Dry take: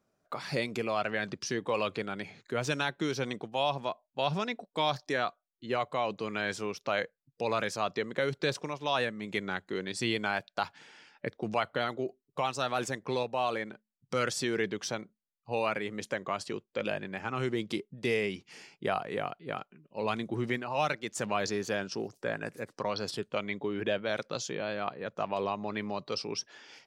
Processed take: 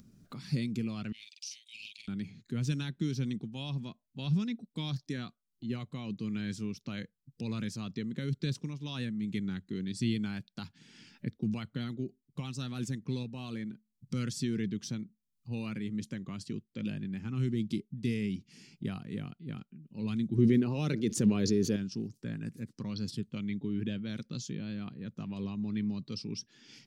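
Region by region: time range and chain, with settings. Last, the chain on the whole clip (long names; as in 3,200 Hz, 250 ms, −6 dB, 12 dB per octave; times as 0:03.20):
0:01.12–0:02.08: Butterworth high-pass 2,300 Hz 72 dB per octave + double-tracking delay 45 ms −3 dB + highs frequency-modulated by the lows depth 0.42 ms
0:20.38–0:21.76: parametric band 430 Hz +13 dB 0.99 octaves + notch filter 7,600 Hz, Q 8.4 + envelope flattener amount 50%
whole clip: drawn EQ curve 230 Hz 0 dB, 640 Hz −30 dB, 4,300 Hz −12 dB; upward compression, threshold −50 dBFS; level +6.5 dB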